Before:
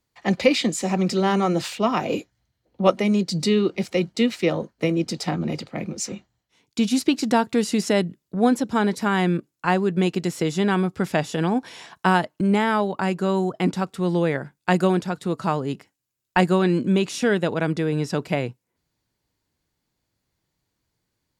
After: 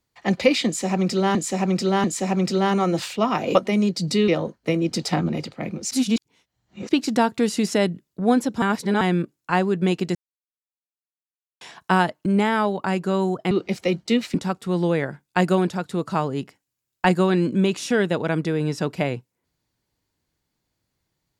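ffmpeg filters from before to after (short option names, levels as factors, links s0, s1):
-filter_complex "[0:a]asplit=15[s0][s1][s2][s3][s4][s5][s6][s7][s8][s9][s10][s11][s12][s13][s14];[s0]atrim=end=1.352[s15];[s1]atrim=start=0.658:end=1.352[s16];[s2]atrim=start=0.658:end=2.172[s17];[s3]atrim=start=2.868:end=3.602[s18];[s4]atrim=start=4.428:end=5.042[s19];[s5]atrim=start=5.038:end=5.442,asetpts=PTS-STARTPTS,volume=1.41[s20];[s6]atrim=start=5.438:end=6.062[s21];[s7]atrim=start=6.058:end=7.042,asetpts=PTS-STARTPTS,areverse[s22];[s8]atrim=start=7.038:end=8.772[s23];[s9]atrim=start=8.768:end=9.162,asetpts=PTS-STARTPTS,areverse[s24];[s10]atrim=start=9.158:end=10.3,asetpts=PTS-STARTPTS,afade=t=out:st=1.138:d=0.004:c=hsin[s25];[s11]atrim=start=10.3:end=11.76,asetpts=PTS-STARTPTS,volume=0[s26];[s12]atrim=start=11.76:end=13.662,asetpts=PTS-STARTPTS,afade=t=in:d=0.004:c=hsin[s27];[s13]atrim=start=3.598:end=4.432[s28];[s14]atrim=start=13.658[s29];[s15][s16]acrossfade=d=0.004:c1=hsin:c2=hsin[s30];[s30][s17]acrossfade=d=0.004:c1=hsin:c2=hsin[s31];[s31][s18]acrossfade=d=0.004:c1=hsin:c2=hsin[s32];[s32][s19]acrossfade=d=0.004:c1=hsin:c2=hsin[s33];[s33][s20]acrossfade=d=0.004:c1=hsin:c2=hsin[s34];[s34][s21]acrossfade=d=0.004:c1=hsin:c2=hsin[s35];[s35][s22]acrossfade=d=0.004:c1=hsin:c2=hsin[s36];[s36][s23]acrossfade=d=0.004:c1=hsin:c2=hsin[s37];[s37][s24]acrossfade=d=0.004:c1=hsin:c2=hsin[s38];[s25][s26][s27]concat=n=3:v=0:a=1[s39];[s38][s39]acrossfade=d=0.004:c1=hsin:c2=hsin[s40];[s40][s28]acrossfade=d=0.004:c1=hsin:c2=hsin[s41];[s41][s29]acrossfade=d=0.004:c1=hsin:c2=hsin"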